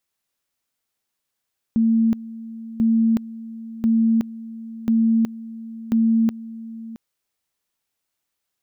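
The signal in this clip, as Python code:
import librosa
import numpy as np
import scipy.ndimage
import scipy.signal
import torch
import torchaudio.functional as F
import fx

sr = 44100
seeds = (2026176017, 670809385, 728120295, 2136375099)

y = fx.two_level_tone(sr, hz=226.0, level_db=-14.0, drop_db=17.5, high_s=0.37, low_s=0.67, rounds=5)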